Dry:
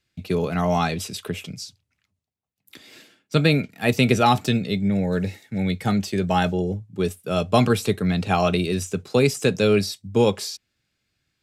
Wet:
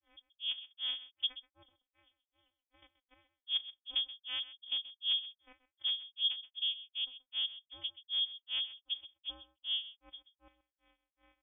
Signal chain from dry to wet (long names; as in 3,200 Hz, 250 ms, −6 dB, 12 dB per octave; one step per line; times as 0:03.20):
spike at every zero crossing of −18.5 dBFS
output level in coarse steps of 13 dB
channel vocoder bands 4, square 124 Hz
granular cloud 228 ms, grains 2.6 per second, pitch spread up and down by 0 semitones
rotating-speaker cabinet horn 5 Hz, later 0.9 Hz, at 0:08.68
single-tap delay 129 ms −15.5 dB
voice inversion scrambler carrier 3,400 Hz
level −3.5 dB